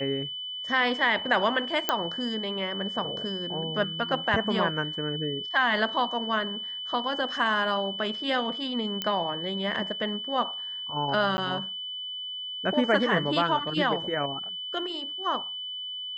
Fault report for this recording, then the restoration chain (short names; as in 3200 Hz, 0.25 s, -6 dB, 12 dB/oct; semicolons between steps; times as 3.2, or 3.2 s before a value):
tone 3000 Hz -33 dBFS
1.89 pop -8 dBFS
9.02 pop -13 dBFS
11.37–11.38 gap 10 ms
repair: de-click; notch 3000 Hz, Q 30; interpolate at 11.37, 10 ms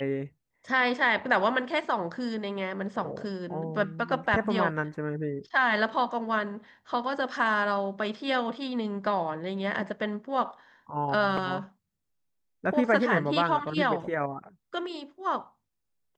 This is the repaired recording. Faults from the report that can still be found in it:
none